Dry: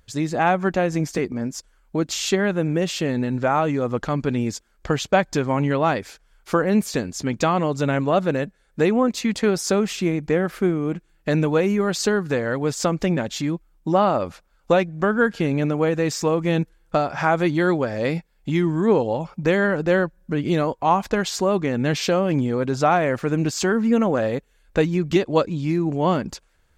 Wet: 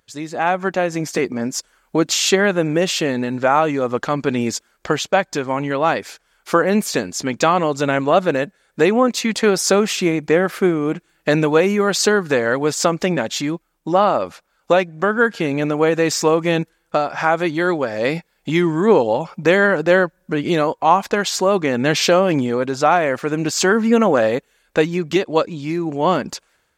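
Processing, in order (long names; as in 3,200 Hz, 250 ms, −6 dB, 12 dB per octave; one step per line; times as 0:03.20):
high-pass filter 370 Hz 6 dB per octave
automatic gain control gain up to 11.5 dB
level −1 dB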